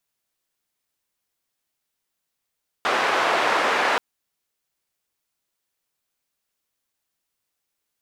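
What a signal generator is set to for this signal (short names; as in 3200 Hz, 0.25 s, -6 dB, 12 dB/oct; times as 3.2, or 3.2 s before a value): noise band 470–1500 Hz, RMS -21 dBFS 1.13 s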